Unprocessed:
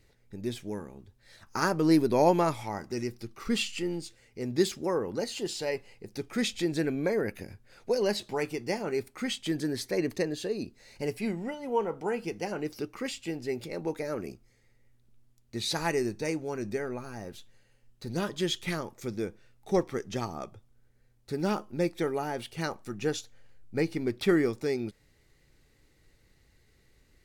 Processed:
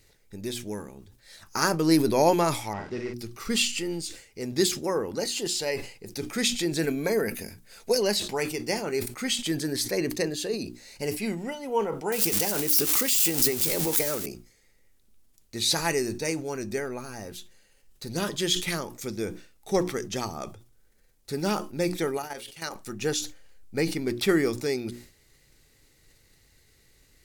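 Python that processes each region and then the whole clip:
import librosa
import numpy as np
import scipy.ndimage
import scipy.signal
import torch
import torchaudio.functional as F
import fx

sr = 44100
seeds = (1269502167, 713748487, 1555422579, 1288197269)

y = fx.chain(x, sr, fx.delta_mod(bps=64000, step_db=-50.5),
    fx.lowpass(hz=2800.0, slope=12),
    fx.doubler(ms=50.0, db=-5), at=(2.73, 3.14))
y = fx.chain(y, sr, fx.high_shelf(hz=7000.0, db=7.5),
    fx.comb(ms=4.5, depth=0.3), at=(6.82, 8.01))
y = fx.chain(y, sr, fx.crossing_spikes(level_db=-29.0),
    fx.pre_swell(db_per_s=22.0), at=(12.12, 14.26))
y = fx.chain(y, sr, fx.low_shelf(hz=490.0, db=-9.0),
    fx.hum_notches(base_hz=60, count=9),
    fx.level_steps(step_db=12), at=(22.17, 22.75))
y = fx.high_shelf(y, sr, hz=3800.0, db=10.5)
y = fx.hum_notches(y, sr, base_hz=60, count=6)
y = fx.sustainer(y, sr, db_per_s=110.0)
y = F.gain(torch.from_numpy(y), 1.5).numpy()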